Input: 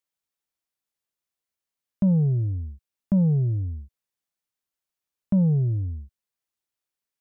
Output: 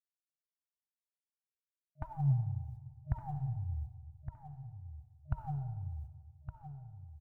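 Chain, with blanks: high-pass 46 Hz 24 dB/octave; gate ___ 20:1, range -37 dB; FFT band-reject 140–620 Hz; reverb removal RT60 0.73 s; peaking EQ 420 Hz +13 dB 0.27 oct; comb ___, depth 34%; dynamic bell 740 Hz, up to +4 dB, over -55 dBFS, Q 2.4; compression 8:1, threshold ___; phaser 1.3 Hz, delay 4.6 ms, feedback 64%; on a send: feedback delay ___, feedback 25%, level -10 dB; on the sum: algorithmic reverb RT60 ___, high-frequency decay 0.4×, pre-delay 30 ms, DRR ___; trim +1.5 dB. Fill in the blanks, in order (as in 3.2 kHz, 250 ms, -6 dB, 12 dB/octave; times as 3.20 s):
-39 dBFS, 1.3 ms, -36 dBFS, 1164 ms, 1.5 s, 9.5 dB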